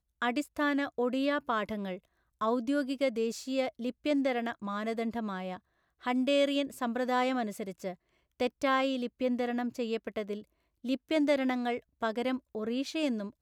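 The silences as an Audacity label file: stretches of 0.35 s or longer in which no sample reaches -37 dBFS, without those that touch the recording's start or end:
1.960000	2.410000	silence
5.570000	6.060000	silence
7.920000	8.400000	silence
10.390000	10.850000	silence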